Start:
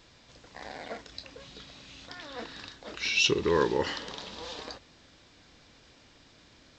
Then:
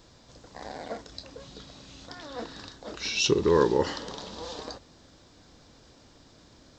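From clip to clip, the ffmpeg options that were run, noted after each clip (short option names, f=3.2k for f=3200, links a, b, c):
-af "equalizer=f=2.4k:t=o:w=1.4:g=-10,volume=4.5dB"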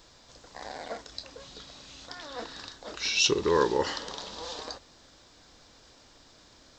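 -af "equalizer=f=140:w=0.31:g=-9.5,volume=2.5dB"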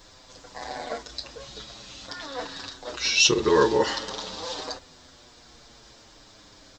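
-filter_complex "[0:a]asplit=2[a][b];[b]adelay=7.3,afreqshift=-0.46[c];[a][c]amix=inputs=2:normalize=1,volume=8dB"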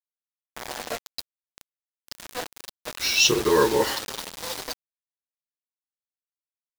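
-af "acrusher=bits=4:mix=0:aa=0.000001"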